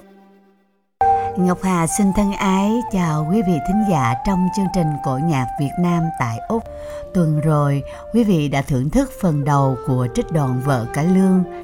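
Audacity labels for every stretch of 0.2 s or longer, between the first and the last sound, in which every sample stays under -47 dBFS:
0.510000	1.010000	silence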